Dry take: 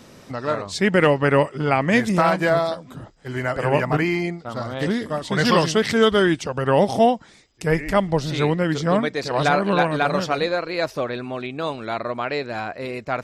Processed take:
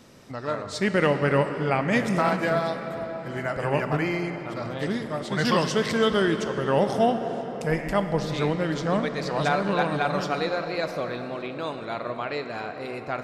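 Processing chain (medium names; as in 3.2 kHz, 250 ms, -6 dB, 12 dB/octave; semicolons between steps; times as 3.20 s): on a send: reverberation RT60 5.5 s, pre-delay 16 ms, DRR 7 dB; on the sum: trim -5.5 dB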